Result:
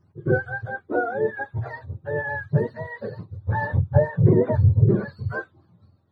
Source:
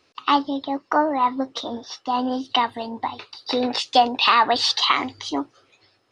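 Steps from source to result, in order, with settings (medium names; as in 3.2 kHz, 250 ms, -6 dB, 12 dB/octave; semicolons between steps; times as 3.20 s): spectrum inverted on a logarithmic axis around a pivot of 660 Hz; 3.80–5.08 s: treble shelf 3.4 kHz -9 dB; trim -2.5 dB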